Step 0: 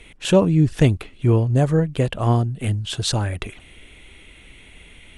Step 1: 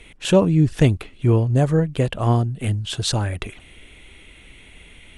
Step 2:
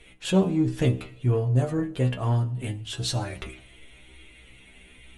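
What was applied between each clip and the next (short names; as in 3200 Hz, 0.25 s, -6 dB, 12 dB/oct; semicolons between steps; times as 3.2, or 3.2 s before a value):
nothing audible
metallic resonator 62 Hz, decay 0.32 s, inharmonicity 0.002; in parallel at -10 dB: soft clip -27 dBFS, distortion -7 dB; on the sum: reverb RT60 0.85 s, pre-delay 48 ms, DRR 18 dB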